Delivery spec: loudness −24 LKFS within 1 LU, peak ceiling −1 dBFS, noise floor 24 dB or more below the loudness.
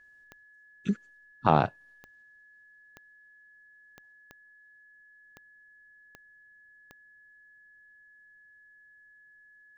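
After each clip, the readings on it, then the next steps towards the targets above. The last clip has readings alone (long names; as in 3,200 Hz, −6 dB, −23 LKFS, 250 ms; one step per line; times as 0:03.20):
number of clicks 8; interfering tone 1,700 Hz; level of the tone −55 dBFS; integrated loudness −28.5 LKFS; sample peak −5.5 dBFS; target loudness −24.0 LKFS
→ click removal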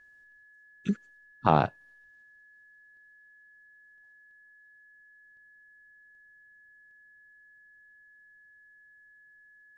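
number of clicks 0; interfering tone 1,700 Hz; level of the tone −55 dBFS
→ notch filter 1,700 Hz, Q 30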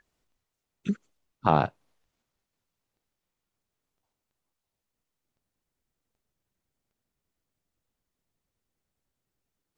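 interfering tone none found; integrated loudness −28.5 LKFS; sample peak −6.0 dBFS; target loudness −24.0 LKFS
→ level +4.5 dB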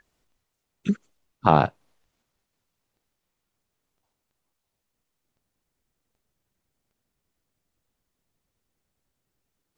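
integrated loudness −24.0 LKFS; sample peak −1.5 dBFS; background noise floor −81 dBFS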